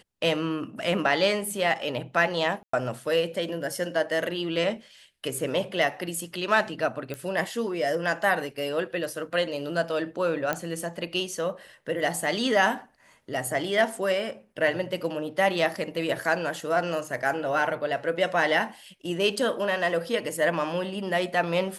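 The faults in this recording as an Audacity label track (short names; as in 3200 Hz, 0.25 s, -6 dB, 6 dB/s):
2.630000	2.730000	gap 0.104 s
7.140000	7.140000	pop -20 dBFS
10.530000	10.530000	pop -12 dBFS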